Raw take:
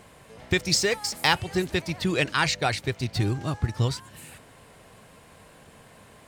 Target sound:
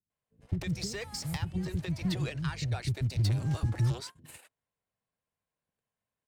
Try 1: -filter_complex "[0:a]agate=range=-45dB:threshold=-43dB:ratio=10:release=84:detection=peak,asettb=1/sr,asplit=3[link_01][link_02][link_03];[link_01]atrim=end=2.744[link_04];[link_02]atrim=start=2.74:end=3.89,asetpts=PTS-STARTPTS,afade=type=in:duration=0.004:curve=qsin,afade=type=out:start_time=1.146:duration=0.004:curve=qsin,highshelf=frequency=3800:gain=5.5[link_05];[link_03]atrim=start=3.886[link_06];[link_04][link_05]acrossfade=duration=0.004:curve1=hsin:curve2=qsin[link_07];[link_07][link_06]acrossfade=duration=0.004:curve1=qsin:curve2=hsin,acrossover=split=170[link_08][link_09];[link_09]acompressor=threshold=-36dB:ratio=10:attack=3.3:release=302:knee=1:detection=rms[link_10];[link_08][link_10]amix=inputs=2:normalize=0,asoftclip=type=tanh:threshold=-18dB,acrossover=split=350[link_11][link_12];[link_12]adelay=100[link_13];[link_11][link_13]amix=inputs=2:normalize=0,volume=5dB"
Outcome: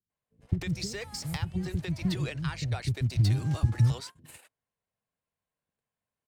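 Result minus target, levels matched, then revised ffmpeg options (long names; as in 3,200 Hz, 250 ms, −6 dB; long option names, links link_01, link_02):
soft clipping: distortion −10 dB
-filter_complex "[0:a]agate=range=-45dB:threshold=-43dB:ratio=10:release=84:detection=peak,asettb=1/sr,asplit=3[link_01][link_02][link_03];[link_01]atrim=end=2.744[link_04];[link_02]atrim=start=2.74:end=3.89,asetpts=PTS-STARTPTS,afade=type=in:duration=0.004:curve=qsin,afade=type=out:start_time=1.146:duration=0.004:curve=qsin,highshelf=frequency=3800:gain=5.5[link_05];[link_03]atrim=start=3.886[link_06];[link_04][link_05]acrossfade=duration=0.004:curve1=hsin:curve2=qsin[link_07];[link_07][link_06]acrossfade=duration=0.004:curve1=qsin:curve2=hsin,acrossover=split=170[link_08][link_09];[link_09]acompressor=threshold=-36dB:ratio=10:attack=3.3:release=302:knee=1:detection=rms[link_10];[link_08][link_10]amix=inputs=2:normalize=0,asoftclip=type=tanh:threshold=-27.5dB,acrossover=split=350[link_11][link_12];[link_12]adelay=100[link_13];[link_11][link_13]amix=inputs=2:normalize=0,volume=5dB"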